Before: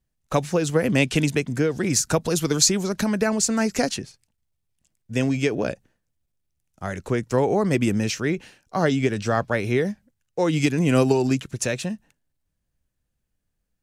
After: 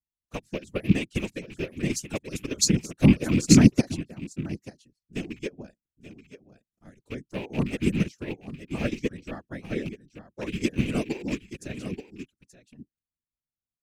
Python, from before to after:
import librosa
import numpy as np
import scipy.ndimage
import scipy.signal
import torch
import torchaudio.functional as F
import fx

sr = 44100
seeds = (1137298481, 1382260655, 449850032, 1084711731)

y = fx.rattle_buzz(x, sr, strikes_db=-25.0, level_db=-14.0)
y = fx.dereverb_blind(y, sr, rt60_s=0.68)
y = fx.peak_eq(y, sr, hz=220.0, db=10.5, octaves=0.36)
y = y + 10.0 ** (-5.5 / 20.0) * np.pad(y, (int(879 * sr / 1000.0), 0))[:len(y)]
y = fx.whisperise(y, sr, seeds[0])
y = fx.peak_eq(y, sr, hz=1000.0, db=-6.0, octaves=1.7)
y = fx.upward_expand(y, sr, threshold_db=-28.0, expansion=2.5)
y = y * 10.0 ** (1.5 / 20.0)